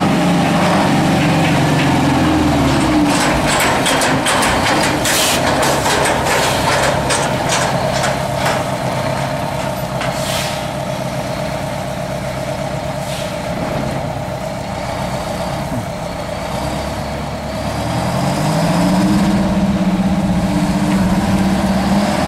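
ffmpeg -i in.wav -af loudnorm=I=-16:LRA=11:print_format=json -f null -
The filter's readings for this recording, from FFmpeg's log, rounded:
"input_i" : "-15.7",
"input_tp" : "-4.6",
"input_lra" : "7.9",
"input_thresh" : "-25.7",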